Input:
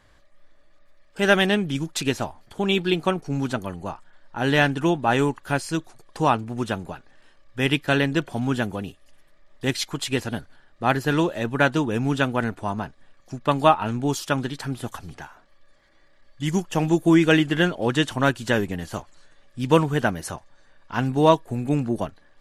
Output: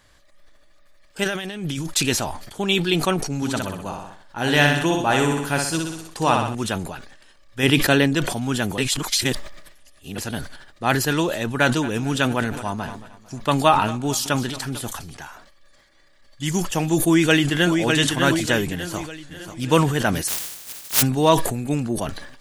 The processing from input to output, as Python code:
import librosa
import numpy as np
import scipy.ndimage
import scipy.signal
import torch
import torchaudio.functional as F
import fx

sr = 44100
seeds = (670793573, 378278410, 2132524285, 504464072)

y = fx.over_compress(x, sr, threshold_db=-29.0, ratio=-1.0, at=(1.23, 1.92), fade=0.02)
y = fx.echo_feedback(y, sr, ms=62, feedback_pct=49, wet_db=-5, at=(3.36, 6.55))
y = fx.peak_eq(y, sr, hz=320.0, db=5.5, octaves=2.7, at=(7.63, 8.15))
y = fx.echo_feedback(y, sr, ms=224, feedback_pct=52, wet_db=-18.5, at=(11.45, 14.85))
y = fx.echo_throw(y, sr, start_s=16.97, length_s=0.83, ms=600, feedback_pct=40, wet_db=-4.5)
y = fx.echo_throw(y, sr, start_s=18.75, length_s=0.89, ms=540, feedback_pct=45, wet_db=-10.0)
y = fx.spec_flatten(y, sr, power=0.11, at=(20.27, 21.01), fade=0.02)
y = fx.edit(y, sr, fx.reverse_span(start_s=8.78, length_s=1.4), tone=tone)
y = fx.high_shelf(y, sr, hz=3200.0, db=10.5)
y = fx.sustainer(y, sr, db_per_s=59.0)
y = y * librosa.db_to_amplitude(-1.0)